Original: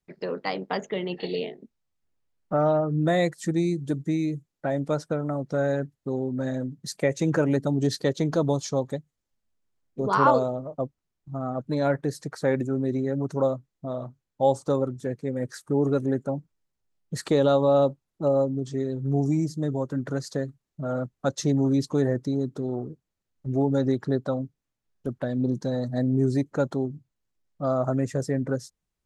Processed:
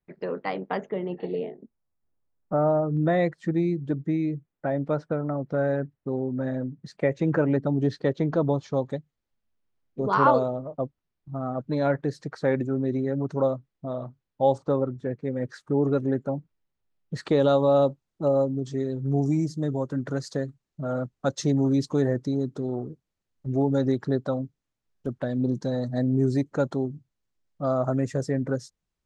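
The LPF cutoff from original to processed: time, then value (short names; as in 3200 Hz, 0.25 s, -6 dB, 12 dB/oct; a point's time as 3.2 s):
2400 Hz
from 0.89 s 1300 Hz
from 2.97 s 2300 Hz
from 8.74 s 4200 Hz
from 14.58 s 2400 Hz
from 15.24 s 3900 Hz
from 17.4 s 7700 Hz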